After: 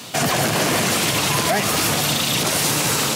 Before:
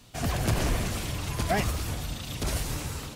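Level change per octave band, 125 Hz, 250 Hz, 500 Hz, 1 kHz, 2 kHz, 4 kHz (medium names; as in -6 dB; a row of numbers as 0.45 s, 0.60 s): +4.0 dB, +10.0 dB, +11.5 dB, +12.5 dB, +14.0 dB, +17.0 dB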